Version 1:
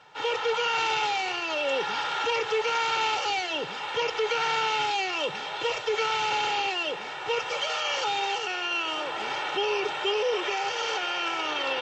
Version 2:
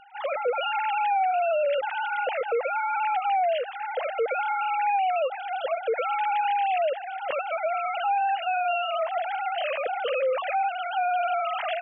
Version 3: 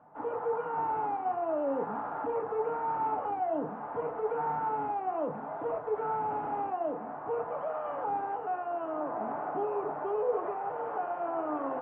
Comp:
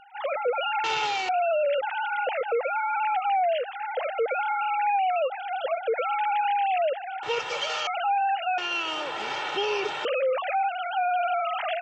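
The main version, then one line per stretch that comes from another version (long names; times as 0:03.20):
2
0:00.84–0:01.29: punch in from 1
0:07.23–0:07.87: punch in from 1
0:08.58–0:10.05: punch in from 1
not used: 3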